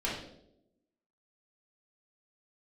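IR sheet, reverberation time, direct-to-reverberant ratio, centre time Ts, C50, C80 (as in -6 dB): 0.80 s, -6.0 dB, 46 ms, 3.0 dB, 7.0 dB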